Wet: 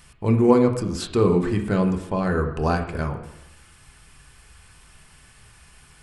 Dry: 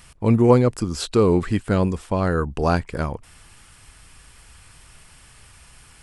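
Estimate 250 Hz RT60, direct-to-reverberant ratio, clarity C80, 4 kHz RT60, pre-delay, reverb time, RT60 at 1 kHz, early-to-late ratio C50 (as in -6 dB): 0.90 s, 2.5 dB, 11.5 dB, 0.90 s, 3 ms, 0.90 s, 0.90 s, 9.5 dB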